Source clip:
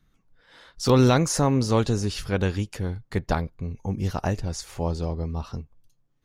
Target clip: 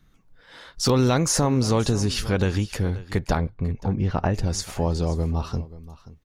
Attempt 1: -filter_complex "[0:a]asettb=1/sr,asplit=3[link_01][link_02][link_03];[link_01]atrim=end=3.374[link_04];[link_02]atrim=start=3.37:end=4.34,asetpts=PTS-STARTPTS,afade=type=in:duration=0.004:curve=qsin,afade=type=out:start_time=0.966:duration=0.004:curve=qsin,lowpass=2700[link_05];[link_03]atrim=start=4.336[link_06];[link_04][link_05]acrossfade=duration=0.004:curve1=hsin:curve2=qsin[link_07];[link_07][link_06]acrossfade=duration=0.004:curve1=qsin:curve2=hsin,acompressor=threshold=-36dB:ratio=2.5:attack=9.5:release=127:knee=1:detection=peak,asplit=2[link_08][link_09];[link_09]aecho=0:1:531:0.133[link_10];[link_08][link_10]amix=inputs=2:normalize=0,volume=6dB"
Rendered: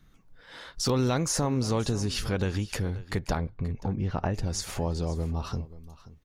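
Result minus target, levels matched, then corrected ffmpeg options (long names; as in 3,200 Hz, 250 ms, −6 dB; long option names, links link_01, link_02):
downward compressor: peak gain reduction +6 dB
-filter_complex "[0:a]asettb=1/sr,asplit=3[link_01][link_02][link_03];[link_01]atrim=end=3.374[link_04];[link_02]atrim=start=3.37:end=4.34,asetpts=PTS-STARTPTS,afade=type=in:duration=0.004:curve=qsin,afade=type=out:start_time=0.966:duration=0.004:curve=qsin,lowpass=2700[link_05];[link_03]atrim=start=4.336[link_06];[link_04][link_05]acrossfade=duration=0.004:curve1=hsin:curve2=qsin[link_07];[link_07][link_06]acrossfade=duration=0.004:curve1=qsin:curve2=hsin,acompressor=threshold=-26dB:ratio=2.5:attack=9.5:release=127:knee=1:detection=peak,asplit=2[link_08][link_09];[link_09]aecho=0:1:531:0.133[link_10];[link_08][link_10]amix=inputs=2:normalize=0,volume=6dB"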